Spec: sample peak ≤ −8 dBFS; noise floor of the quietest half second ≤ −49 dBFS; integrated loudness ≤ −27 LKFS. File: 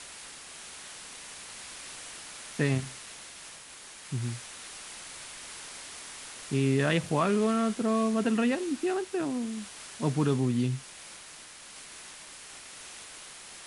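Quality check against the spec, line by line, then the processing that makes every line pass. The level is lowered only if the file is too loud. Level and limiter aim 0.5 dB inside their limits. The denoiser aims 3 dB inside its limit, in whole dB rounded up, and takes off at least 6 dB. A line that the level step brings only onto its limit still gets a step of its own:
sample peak −14.0 dBFS: in spec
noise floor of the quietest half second −48 dBFS: out of spec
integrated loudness −31.0 LKFS: in spec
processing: broadband denoise 6 dB, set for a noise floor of −48 dBFS

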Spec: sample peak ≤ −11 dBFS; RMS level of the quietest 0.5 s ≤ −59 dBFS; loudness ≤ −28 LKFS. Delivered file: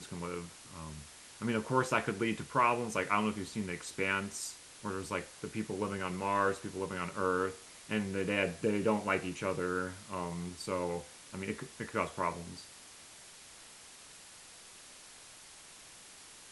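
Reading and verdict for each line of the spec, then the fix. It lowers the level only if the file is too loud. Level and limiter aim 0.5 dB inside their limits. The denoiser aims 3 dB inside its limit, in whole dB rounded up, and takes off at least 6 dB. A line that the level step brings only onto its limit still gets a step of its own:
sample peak −14.0 dBFS: in spec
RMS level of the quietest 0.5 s −54 dBFS: out of spec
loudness −35.0 LKFS: in spec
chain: broadband denoise 8 dB, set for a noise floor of −54 dBFS

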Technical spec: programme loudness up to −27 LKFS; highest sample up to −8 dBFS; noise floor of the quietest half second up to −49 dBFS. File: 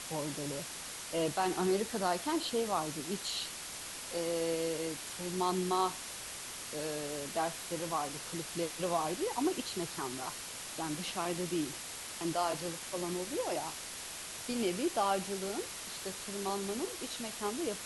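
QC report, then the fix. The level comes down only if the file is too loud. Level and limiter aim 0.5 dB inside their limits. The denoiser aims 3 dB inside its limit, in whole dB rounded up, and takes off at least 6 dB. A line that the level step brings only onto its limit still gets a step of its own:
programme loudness −36.0 LKFS: in spec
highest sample −19.0 dBFS: in spec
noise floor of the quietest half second −44 dBFS: out of spec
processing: broadband denoise 8 dB, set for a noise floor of −44 dBFS

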